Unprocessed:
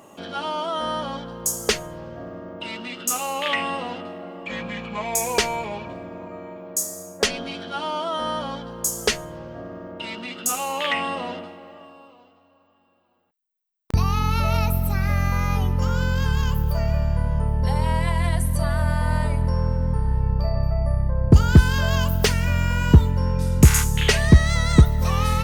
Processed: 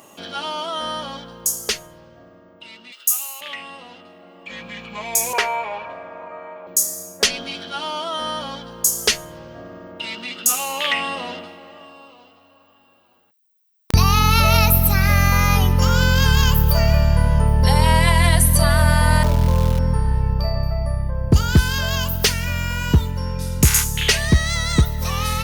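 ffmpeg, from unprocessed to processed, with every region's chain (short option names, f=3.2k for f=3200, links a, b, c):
-filter_complex "[0:a]asettb=1/sr,asplit=3[a][b][c];[a]atrim=end=2.924[d];[b]atrim=start=2.92:end=3.41,asetpts=PTS-STARTPTS,afade=t=in:d=0.004:c=qsin,afade=t=out:st=0.486:d=0.004:c=qsin,highpass=790,aemphasis=mode=production:type=50fm[e];[c]atrim=start=3.406[f];[d][e]acrossfade=d=0.004:c1=hsin:c2=qsin[g];[g][f]acrossfade=d=0.004:c1=qsin:c2=hsin,asettb=1/sr,asplit=3[h][i][j];[h]atrim=end=5.334[k];[i]atrim=start=5.33:end=6.67,asetpts=PTS-STARTPTS,afade=t=in:d=0.004:c=qsin,afade=t=out:st=1.336:d=0.004:c=qsin,acrossover=split=530 2200:gain=0.141 1 0.112[l][m][n];[l][m][n]amix=inputs=3:normalize=0,bandreject=f=50:t=h:w=6,bandreject=f=100:t=h:w=6,bandreject=f=150:t=h:w=6,bandreject=f=200:t=h:w=6,bandreject=f=250:t=h:w=6,bandreject=f=300:t=h:w=6,bandreject=f=350:t=h:w=6,bandreject=f=400:t=h:w=6,bandreject=f=450:t=h:w=6,acontrast=77[o];[j]atrim=start=6.666[p];[k][o]acrossfade=d=0.004:c1=hsin:c2=qsin[q];[q][p]acrossfade=d=0.004:c1=qsin:c2=hsin,asettb=1/sr,asplit=3[r][s][t];[r]atrim=end=19.234[u];[s]atrim=start=19.23:end=19.79,asetpts=PTS-STARTPTS,afade=t=in:d=0.004:c=qsin,afade=t=out:st=0.556:d=0.004:c=qsin,lowpass=f=1.3k:w=0.5412,lowpass=f=1.3k:w=1.3066,aeval=exprs='val(0)*gte(abs(val(0)),0.0158)':c=same[v];[t]atrim=start=19.786[w];[u][v]acrossfade=d=0.004:c1=hsin:c2=qsin[x];[x][w]acrossfade=d=0.004:c1=qsin:c2=hsin,highshelf=f=2.2k:g=11.5,dynaudnorm=f=150:g=21:m=11.5dB,equalizer=f=7.9k:w=2.4:g=-4,volume=-1dB"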